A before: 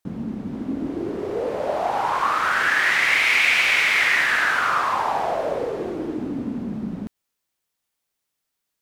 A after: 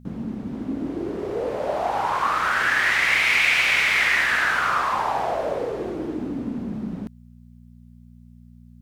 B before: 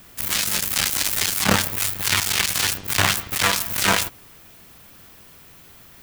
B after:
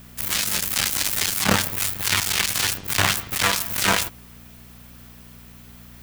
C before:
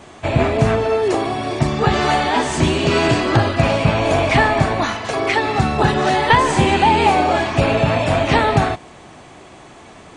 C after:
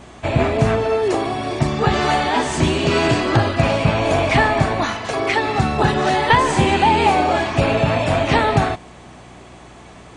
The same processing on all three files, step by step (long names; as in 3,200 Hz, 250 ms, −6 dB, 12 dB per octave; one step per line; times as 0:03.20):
hum with harmonics 60 Hz, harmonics 4, −46 dBFS −2 dB per octave
level −1 dB